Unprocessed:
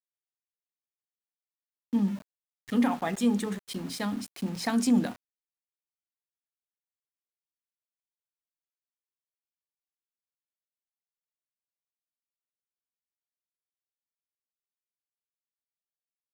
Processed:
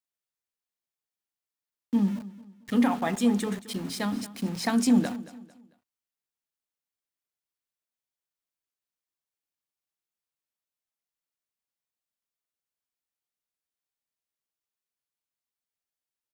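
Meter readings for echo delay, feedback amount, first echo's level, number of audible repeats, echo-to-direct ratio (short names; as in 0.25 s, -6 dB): 0.224 s, 35%, -17.0 dB, 2, -16.5 dB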